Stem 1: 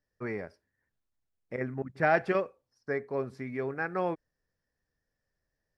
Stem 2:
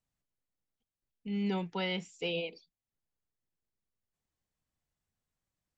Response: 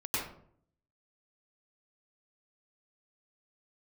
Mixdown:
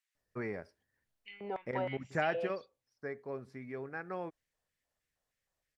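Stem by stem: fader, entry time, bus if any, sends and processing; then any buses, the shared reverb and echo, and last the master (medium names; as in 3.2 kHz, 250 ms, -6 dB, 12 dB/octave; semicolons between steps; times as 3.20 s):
2.20 s -1.5 dB -> 2.68 s -8 dB, 0.15 s, no send, none
+1.0 dB, 0.00 s, no send, low-pass that closes with the level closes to 1.1 kHz, closed at -30 dBFS; LFO high-pass square 3.2 Hz 600–1900 Hz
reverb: none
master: compression 1.5:1, threshold -37 dBFS, peak gain reduction 6 dB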